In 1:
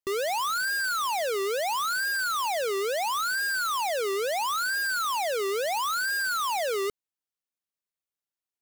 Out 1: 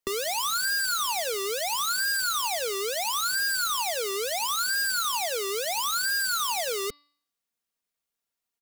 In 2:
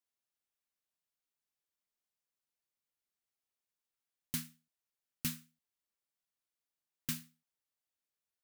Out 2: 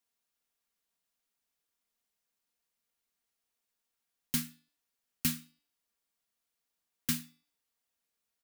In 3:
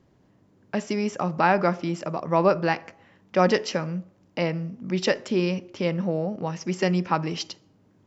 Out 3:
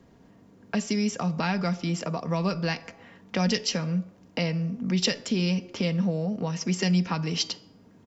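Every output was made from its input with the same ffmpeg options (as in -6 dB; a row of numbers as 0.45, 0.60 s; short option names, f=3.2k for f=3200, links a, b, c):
-filter_complex "[0:a]aecho=1:1:4.3:0.39,acrossover=split=170|3000[a][b][c];[b]acompressor=threshold=-36dB:ratio=5[d];[a][d][c]amix=inputs=3:normalize=0,bandreject=f=290.1:t=h:w=4,bandreject=f=580.2:t=h:w=4,bandreject=f=870.3:t=h:w=4,bandreject=f=1.1604k:t=h:w=4,bandreject=f=1.4505k:t=h:w=4,bandreject=f=1.7406k:t=h:w=4,bandreject=f=2.0307k:t=h:w=4,bandreject=f=2.3208k:t=h:w=4,bandreject=f=2.6109k:t=h:w=4,bandreject=f=2.901k:t=h:w=4,bandreject=f=3.1911k:t=h:w=4,bandreject=f=3.4812k:t=h:w=4,bandreject=f=3.7713k:t=h:w=4,bandreject=f=4.0614k:t=h:w=4,bandreject=f=4.3515k:t=h:w=4,bandreject=f=4.6416k:t=h:w=4,bandreject=f=4.9317k:t=h:w=4,bandreject=f=5.2218k:t=h:w=4,volume=5.5dB"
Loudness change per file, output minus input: +1.0, +6.0, -2.0 LU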